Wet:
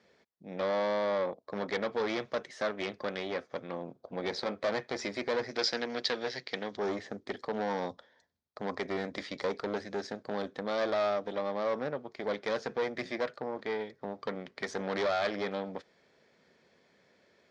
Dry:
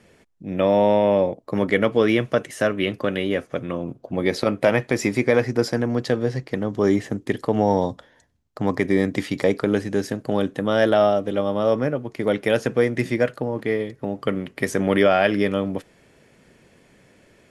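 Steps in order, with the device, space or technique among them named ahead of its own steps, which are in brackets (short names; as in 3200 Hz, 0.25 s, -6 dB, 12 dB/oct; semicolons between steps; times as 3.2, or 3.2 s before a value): guitar amplifier (tube stage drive 20 dB, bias 0.7; tone controls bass -6 dB, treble +12 dB; speaker cabinet 93–4400 Hz, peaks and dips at 120 Hz -8 dB, 300 Hz -6 dB, 2800 Hz -9 dB); 5.51–6.77 weighting filter D; gain -5 dB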